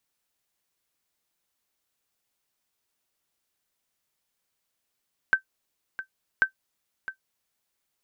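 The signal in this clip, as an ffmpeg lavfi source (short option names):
-f lavfi -i "aevalsrc='0.299*(sin(2*PI*1550*mod(t,1.09))*exp(-6.91*mod(t,1.09)/0.1)+0.2*sin(2*PI*1550*max(mod(t,1.09)-0.66,0))*exp(-6.91*max(mod(t,1.09)-0.66,0)/0.1))':d=2.18:s=44100"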